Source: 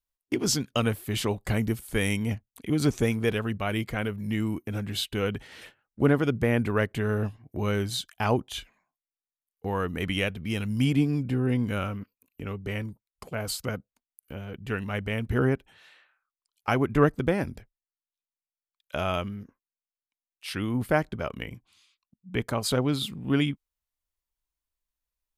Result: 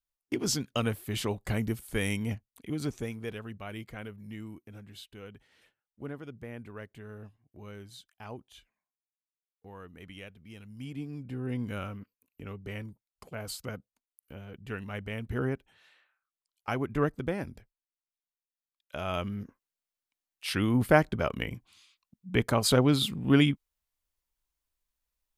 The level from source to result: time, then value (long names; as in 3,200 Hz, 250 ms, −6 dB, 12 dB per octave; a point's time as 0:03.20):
0:02.30 −4 dB
0:03.13 −12 dB
0:04.07 −12 dB
0:05.16 −18.5 dB
0:10.76 −18.5 dB
0:11.61 −7 dB
0:19.01 −7 dB
0:19.41 +2.5 dB